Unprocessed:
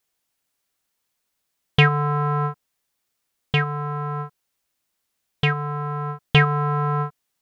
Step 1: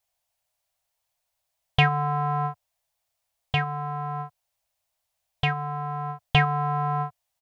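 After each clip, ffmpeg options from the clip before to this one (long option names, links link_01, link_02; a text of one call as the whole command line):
ffmpeg -i in.wav -af "firequalizer=gain_entry='entry(100,0);entry(280,-27);entry(630,4);entry(1300,-8);entry(2400,-5)':delay=0.05:min_phase=1,volume=1.5dB" out.wav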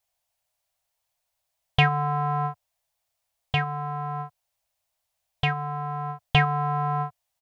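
ffmpeg -i in.wav -af anull out.wav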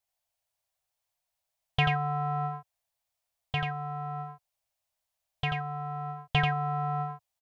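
ffmpeg -i in.wav -af "aecho=1:1:87:0.596,volume=-6.5dB" out.wav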